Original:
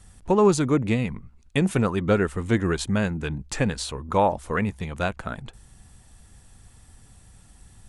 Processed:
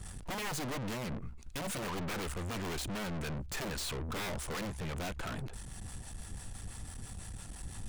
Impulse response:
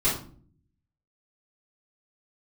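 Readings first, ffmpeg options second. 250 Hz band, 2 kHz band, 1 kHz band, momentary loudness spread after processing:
-16.5 dB, -10.0 dB, -14.0 dB, 9 LU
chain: -filter_complex "[0:a]acrossover=split=560[a][b];[a]aeval=exprs='val(0)*(1-0.5/2+0.5/2*cos(2*PI*6*n/s))':c=same[c];[b]aeval=exprs='val(0)*(1-0.5/2-0.5/2*cos(2*PI*6*n/s))':c=same[d];[c][d]amix=inputs=2:normalize=0,aeval=exprs='(mod(8.41*val(0)+1,2)-1)/8.41':c=same,aeval=exprs='(tanh(251*val(0)+0.4)-tanh(0.4))/251':c=same,volume=11dB"

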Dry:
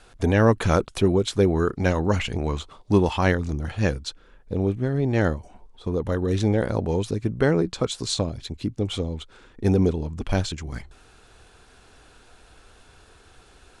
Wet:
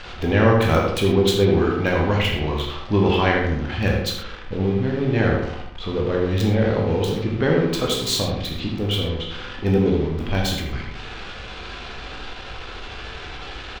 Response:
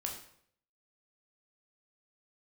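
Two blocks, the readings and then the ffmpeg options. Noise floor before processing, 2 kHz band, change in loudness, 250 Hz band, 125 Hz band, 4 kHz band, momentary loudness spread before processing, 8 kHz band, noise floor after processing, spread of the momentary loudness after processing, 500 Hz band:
-54 dBFS, +5.5 dB, +3.0 dB, +2.5 dB, +2.5 dB, +8.0 dB, 11 LU, +2.5 dB, -35 dBFS, 16 LU, +3.5 dB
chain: -filter_complex "[0:a]aeval=exprs='val(0)+0.5*0.0266*sgn(val(0))':c=same,equalizer=f=3.1k:w=1:g=6,acrossover=split=5100[a][b];[a]asplit=2[c][d];[d]adelay=78,lowpass=f=3.3k:p=1,volume=-4.5dB,asplit=2[e][f];[f]adelay=78,lowpass=f=3.3k:p=1,volume=0.49,asplit=2[g][h];[h]adelay=78,lowpass=f=3.3k:p=1,volume=0.49,asplit=2[i][j];[j]adelay=78,lowpass=f=3.3k:p=1,volume=0.49,asplit=2[k][l];[l]adelay=78,lowpass=f=3.3k:p=1,volume=0.49,asplit=2[m][n];[n]adelay=78,lowpass=f=3.3k:p=1,volume=0.49[o];[c][e][g][i][k][m][o]amix=inputs=7:normalize=0[p];[b]acrusher=bits=4:mix=0:aa=0.000001[q];[p][q]amix=inputs=2:normalize=0[r];[1:a]atrim=start_sample=2205,atrim=end_sample=6174[s];[r][s]afir=irnorm=-1:irlink=0"

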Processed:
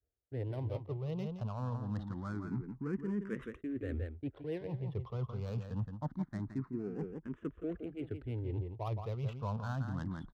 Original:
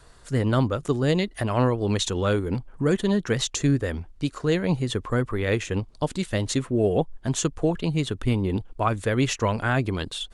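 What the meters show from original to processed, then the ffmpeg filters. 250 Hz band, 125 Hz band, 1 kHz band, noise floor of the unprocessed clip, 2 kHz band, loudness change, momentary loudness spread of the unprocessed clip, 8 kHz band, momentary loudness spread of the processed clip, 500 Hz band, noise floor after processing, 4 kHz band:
-14.5 dB, -12.0 dB, -17.0 dB, -49 dBFS, -21.0 dB, -14.5 dB, 5 LU, under -35 dB, 4 LU, -17.5 dB, -66 dBFS, under -25 dB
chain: -filter_complex "[0:a]lowpass=1.6k,adynamicsmooth=sensitivity=5.5:basefreq=970,lowshelf=f=150:g=4.5,asplit=2[a][b];[b]adelay=169.1,volume=-10dB,highshelf=f=4k:g=-3.8[c];[a][c]amix=inputs=2:normalize=0,areverse,acompressor=threshold=-34dB:ratio=12,areverse,adynamicequalizer=threshold=0.00224:dfrequency=600:dqfactor=1.4:tfrequency=600:tqfactor=1.4:attack=5:release=100:ratio=0.375:range=3:mode=cutabove:tftype=bell,highpass=60,agate=range=-33dB:threshold=-49dB:ratio=16:detection=peak,asplit=2[d][e];[e]afreqshift=0.25[f];[d][f]amix=inputs=2:normalize=1,volume=3dB"

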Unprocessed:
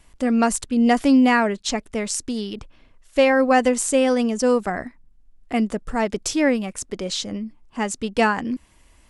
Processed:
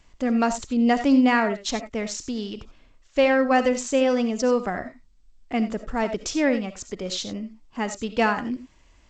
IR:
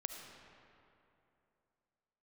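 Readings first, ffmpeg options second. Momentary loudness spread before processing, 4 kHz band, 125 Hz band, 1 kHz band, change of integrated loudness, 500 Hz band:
14 LU, -2.5 dB, n/a, -2.5 dB, -2.5 dB, -2.5 dB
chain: -filter_complex "[1:a]atrim=start_sample=2205,atrim=end_sample=4410[a];[0:a][a]afir=irnorm=-1:irlink=0" -ar 16000 -c:a g722

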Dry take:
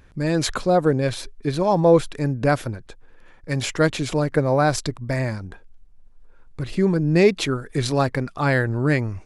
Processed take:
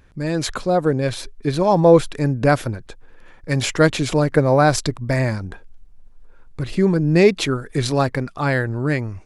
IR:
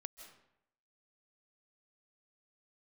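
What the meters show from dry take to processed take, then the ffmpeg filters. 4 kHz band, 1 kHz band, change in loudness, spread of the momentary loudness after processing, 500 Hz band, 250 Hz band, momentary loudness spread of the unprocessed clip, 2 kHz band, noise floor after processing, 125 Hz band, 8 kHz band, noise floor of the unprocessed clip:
+2.5 dB, +2.5 dB, +2.5 dB, 10 LU, +2.5 dB, +2.5 dB, 11 LU, +2.0 dB, -45 dBFS, +2.5 dB, +2.5 dB, -49 dBFS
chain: -af "dynaudnorm=f=110:g=21:m=11.5dB,volume=-1dB"

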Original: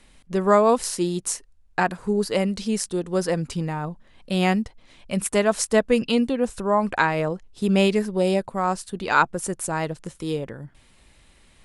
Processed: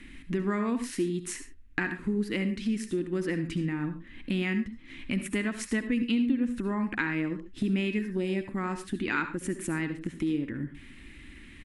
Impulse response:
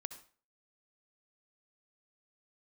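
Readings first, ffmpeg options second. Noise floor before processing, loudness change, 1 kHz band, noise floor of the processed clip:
-56 dBFS, -7.5 dB, -15.5 dB, -49 dBFS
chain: -filter_complex "[0:a]firequalizer=gain_entry='entry(180,0);entry(290,12);entry(430,-7);entry(620,-16);entry(1900,6);entry(4600,-10)':delay=0.05:min_phase=1,acompressor=threshold=-37dB:ratio=3[a];[1:a]atrim=start_sample=2205,atrim=end_sample=6615[b];[a][b]afir=irnorm=-1:irlink=0,volume=9dB"

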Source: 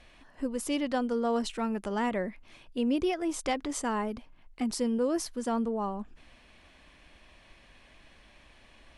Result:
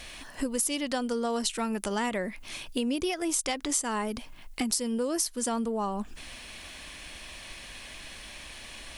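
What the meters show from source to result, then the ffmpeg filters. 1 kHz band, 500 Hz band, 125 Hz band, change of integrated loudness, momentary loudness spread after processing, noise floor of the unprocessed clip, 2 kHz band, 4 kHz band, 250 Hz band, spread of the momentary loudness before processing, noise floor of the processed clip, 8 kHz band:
0.0 dB, -1.0 dB, n/a, +1.0 dB, 14 LU, -58 dBFS, +3.5 dB, +7.0 dB, -1.0 dB, 9 LU, -46 dBFS, +10.5 dB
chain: -af "crystalizer=i=4.5:c=0,acompressor=threshold=-37dB:ratio=4,volume=8.5dB"

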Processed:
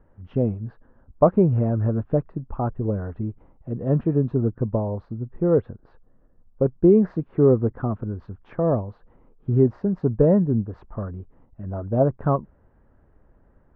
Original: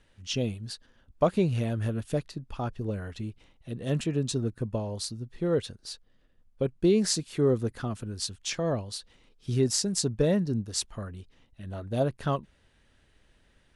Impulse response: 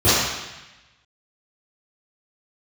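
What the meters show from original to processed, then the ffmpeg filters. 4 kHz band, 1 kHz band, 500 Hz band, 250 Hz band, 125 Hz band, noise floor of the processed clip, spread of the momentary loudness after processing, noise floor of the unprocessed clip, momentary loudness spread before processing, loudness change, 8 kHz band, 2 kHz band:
under -30 dB, +6.5 dB, +7.5 dB, +7.5 dB, +7.5 dB, -59 dBFS, 16 LU, -65 dBFS, 16 LU, +7.0 dB, under -40 dB, n/a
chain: -af "lowpass=f=1.2k:w=0.5412,lowpass=f=1.2k:w=1.3066,volume=7.5dB"

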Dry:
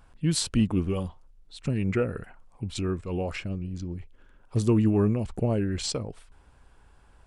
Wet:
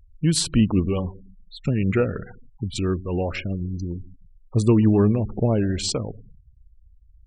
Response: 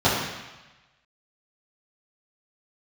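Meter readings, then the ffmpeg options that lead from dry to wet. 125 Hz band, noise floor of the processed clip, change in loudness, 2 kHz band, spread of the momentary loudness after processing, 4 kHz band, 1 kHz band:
+5.0 dB, -55 dBFS, +5.0 dB, +4.5 dB, 14 LU, +5.0 dB, +5.0 dB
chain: -filter_complex "[0:a]asplit=2[a][b];[1:a]atrim=start_sample=2205,lowpass=8.5k,adelay=103[c];[b][c]afir=irnorm=-1:irlink=0,volume=-42.5dB[d];[a][d]amix=inputs=2:normalize=0,afftfilt=real='re*gte(hypot(re,im),0.00891)':imag='im*gte(hypot(re,im),0.00891)':win_size=1024:overlap=0.75,volume=5dB"

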